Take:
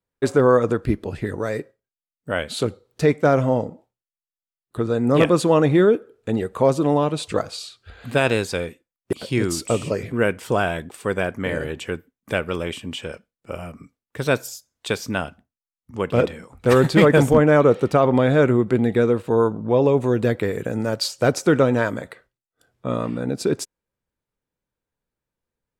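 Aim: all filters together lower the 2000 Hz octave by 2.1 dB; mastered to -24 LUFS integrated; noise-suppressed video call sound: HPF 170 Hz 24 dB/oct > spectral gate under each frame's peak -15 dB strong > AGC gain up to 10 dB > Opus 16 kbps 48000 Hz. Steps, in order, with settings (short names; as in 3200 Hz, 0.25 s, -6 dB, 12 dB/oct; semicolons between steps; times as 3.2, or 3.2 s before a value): HPF 170 Hz 24 dB/oct; bell 2000 Hz -3 dB; spectral gate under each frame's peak -15 dB strong; AGC gain up to 10 dB; gain -4 dB; Opus 16 kbps 48000 Hz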